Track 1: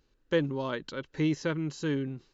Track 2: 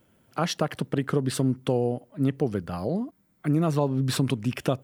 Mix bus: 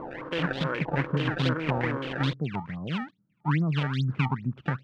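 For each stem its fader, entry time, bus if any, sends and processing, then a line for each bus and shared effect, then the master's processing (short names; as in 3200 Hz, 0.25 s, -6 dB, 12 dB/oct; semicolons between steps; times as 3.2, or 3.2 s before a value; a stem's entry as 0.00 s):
-9.0 dB, 0.00 s, no send, per-bin compression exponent 0.2
+0.5 dB, 0.00 s, no send, band-pass 150 Hz, Q 1.7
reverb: off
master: decimation with a swept rate 24×, swing 160% 2.4 Hz; stepped low-pass 9.4 Hz 940–3600 Hz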